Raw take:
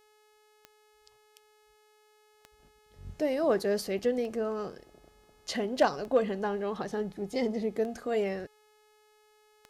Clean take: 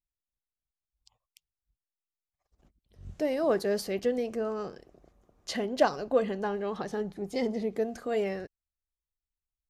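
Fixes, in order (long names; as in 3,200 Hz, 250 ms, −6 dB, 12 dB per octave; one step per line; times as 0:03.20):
clipped peaks rebuilt −15 dBFS
click removal
hum removal 425.1 Hz, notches 33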